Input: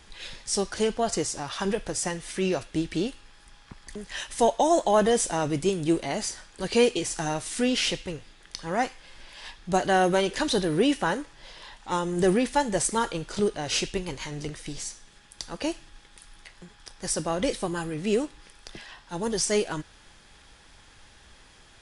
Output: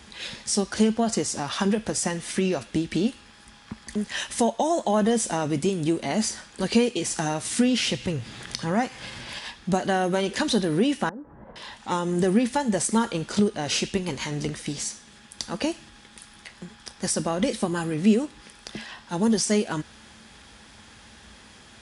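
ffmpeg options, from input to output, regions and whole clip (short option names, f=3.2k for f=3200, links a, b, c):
-filter_complex "[0:a]asettb=1/sr,asplit=3[a][b][c];[a]atrim=end=7.454[d];[b]atrim=start=7.45:end=9.39,asetpts=PTS-STARTPTS,afade=t=in:d=0.004:c=qsin,afade=t=out:st=1.936:d=0.004:c=qsin,equalizer=f=120:w=3:g=12.5,acompressor=mode=upward:threshold=-31dB:ratio=2.5:attack=3.2:release=140:knee=2.83:detection=peak[e];[c]atrim=start=9.386[f];[d][e]acrossfade=d=0.004:c1=hsin:c2=qsin[g];[g][f]acrossfade=d=0.004:c1=qsin:c2=hsin,asettb=1/sr,asplit=3[h][i][j];[h]atrim=end=11.094[k];[i]atrim=start=11.09:end=11.56,asetpts=PTS-STARTPTS,afade=t=in:d=0.004:c=qsin,afade=t=out:st=0.466:d=0.004:c=qsin,lowpass=f=1.4k:w=0.5412,lowpass=f=1.4k:w=1.3066,tiltshelf=f=1.1k:g=6,acompressor=threshold=-41dB:ratio=6:attack=3.2:release=140:knee=1:detection=peak[l];[j]atrim=start=11.556[m];[k][l]acrossfade=d=0.004:c1=hsin:c2=qsin[n];[n][m]acrossfade=d=0.004:c1=qsin:c2=hsin,highpass=f=50:w=0.5412,highpass=f=50:w=1.3066,acompressor=threshold=-29dB:ratio=2.5,equalizer=f=220:w=5.1:g=11.5,volume=5dB"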